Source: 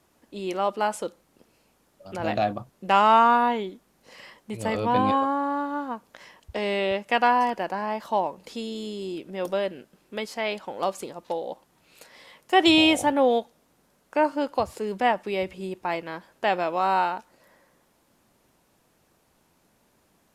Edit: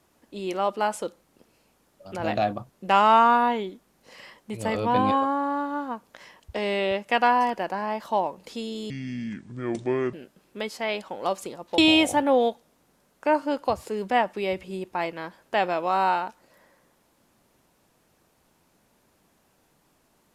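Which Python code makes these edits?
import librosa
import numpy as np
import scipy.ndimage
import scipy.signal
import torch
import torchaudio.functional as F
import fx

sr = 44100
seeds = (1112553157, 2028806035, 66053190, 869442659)

y = fx.edit(x, sr, fx.speed_span(start_s=8.9, length_s=0.8, speed=0.65),
    fx.cut(start_s=11.35, length_s=1.33), tone=tone)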